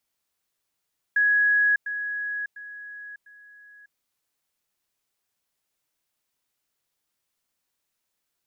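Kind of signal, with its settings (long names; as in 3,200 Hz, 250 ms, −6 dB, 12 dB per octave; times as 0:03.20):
level staircase 1,670 Hz −17 dBFS, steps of −10 dB, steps 4, 0.60 s 0.10 s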